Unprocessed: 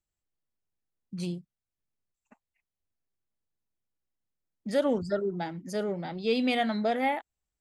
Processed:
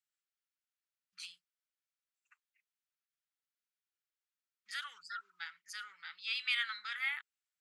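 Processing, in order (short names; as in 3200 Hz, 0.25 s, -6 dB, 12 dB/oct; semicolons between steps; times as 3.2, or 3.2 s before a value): elliptic high-pass 1300 Hz, stop band 50 dB; high shelf 6700 Hz -8 dB; gain +1 dB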